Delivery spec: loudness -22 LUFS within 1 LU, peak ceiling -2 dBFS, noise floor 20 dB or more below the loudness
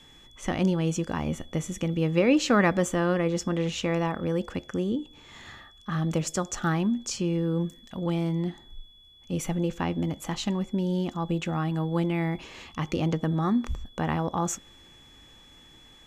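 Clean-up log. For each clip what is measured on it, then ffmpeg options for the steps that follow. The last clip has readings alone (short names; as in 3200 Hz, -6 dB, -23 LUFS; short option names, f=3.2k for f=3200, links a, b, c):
steady tone 3400 Hz; tone level -53 dBFS; loudness -28.0 LUFS; peak -10.5 dBFS; loudness target -22.0 LUFS
-> -af "bandreject=f=3.4k:w=30"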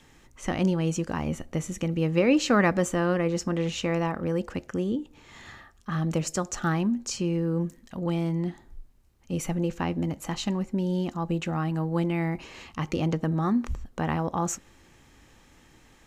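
steady tone none; loudness -28.0 LUFS; peak -10.5 dBFS; loudness target -22.0 LUFS
-> -af "volume=6dB"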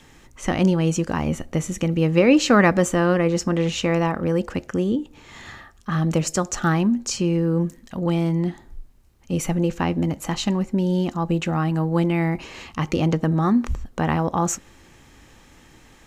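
loudness -22.0 LUFS; peak -4.5 dBFS; noise floor -51 dBFS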